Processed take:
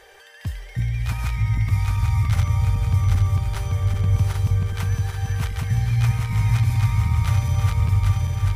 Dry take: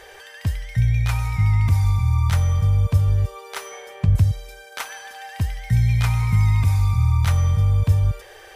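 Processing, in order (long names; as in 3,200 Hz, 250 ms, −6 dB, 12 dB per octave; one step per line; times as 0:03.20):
feedback delay that plays each chunk backwards 394 ms, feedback 77%, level −1 dB
level −5.5 dB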